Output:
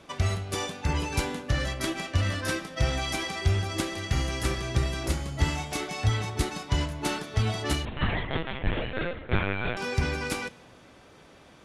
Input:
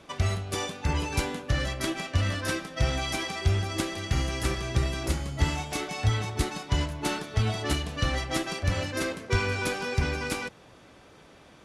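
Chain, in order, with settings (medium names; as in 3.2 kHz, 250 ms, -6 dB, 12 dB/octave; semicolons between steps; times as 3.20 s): reverberation RT60 1.2 s, pre-delay 4 ms, DRR 17.5 dB; 7.85–9.77 s: LPC vocoder at 8 kHz pitch kept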